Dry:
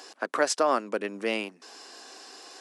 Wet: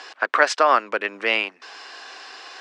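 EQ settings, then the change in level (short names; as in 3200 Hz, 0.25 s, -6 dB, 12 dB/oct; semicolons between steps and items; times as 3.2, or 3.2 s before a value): BPF 240–2500 Hz; tilt shelf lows -10 dB, about 790 Hz; +7.0 dB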